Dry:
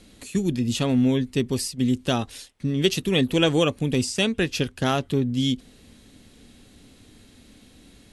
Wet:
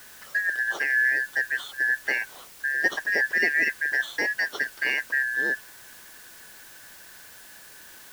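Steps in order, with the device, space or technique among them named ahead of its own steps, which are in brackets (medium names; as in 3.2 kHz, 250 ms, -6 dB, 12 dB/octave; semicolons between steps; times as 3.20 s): split-band scrambled radio (four frequency bands reordered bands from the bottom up 3142; band-pass 320–3200 Hz; white noise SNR 20 dB); trim -2.5 dB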